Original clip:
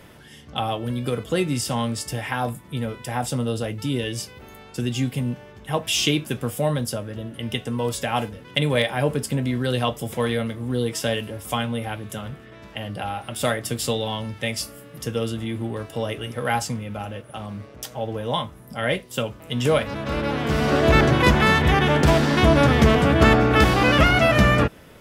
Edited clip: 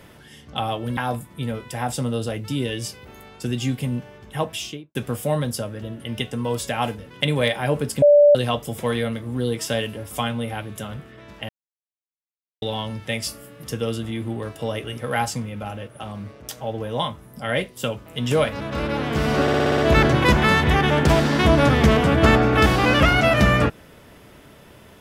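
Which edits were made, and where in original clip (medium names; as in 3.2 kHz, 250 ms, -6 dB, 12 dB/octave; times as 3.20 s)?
0.97–2.31 s: delete
5.70–6.29 s: studio fade out
9.36–9.69 s: bleep 584 Hz -8.5 dBFS
12.83–13.96 s: mute
20.76 s: stutter 0.06 s, 7 plays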